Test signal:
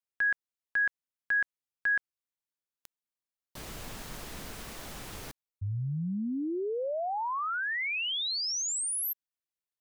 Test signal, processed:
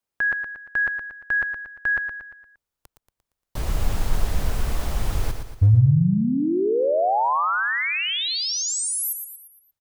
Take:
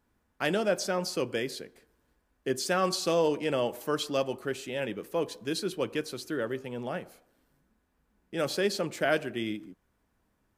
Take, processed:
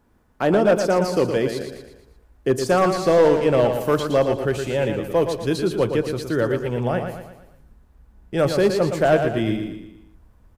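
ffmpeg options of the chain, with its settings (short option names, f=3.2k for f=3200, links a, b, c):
-filter_complex "[0:a]asubboost=boost=5:cutoff=100,acrossover=split=1200[a][b];[a]acontrast=63[c];[b]alimiter=level_in=5.5dB:limit=-24dB:level=0:latency=1:release=472,volume=-5.5dB[d];[c][d]amix=inputs=2:normalize=0,asoftclip=type=hard:threshold=-16.5dB,aecho=1:1:116|232|348|464|580:0.447|0.205|0.0945|0.0435|0.02,volume=6dB"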